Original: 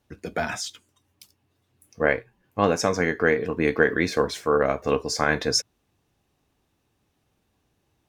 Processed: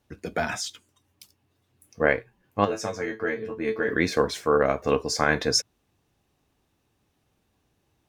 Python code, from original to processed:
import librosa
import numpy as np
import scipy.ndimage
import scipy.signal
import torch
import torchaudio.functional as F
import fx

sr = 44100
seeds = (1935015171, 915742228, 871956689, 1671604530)

y = fx.comb_fb(x, sr, f0_hz=110.0, decay_s=0.16, harmonics='all', damping=0.0, mix_pct=100, at=(2.64, 3.87), fade=0.02)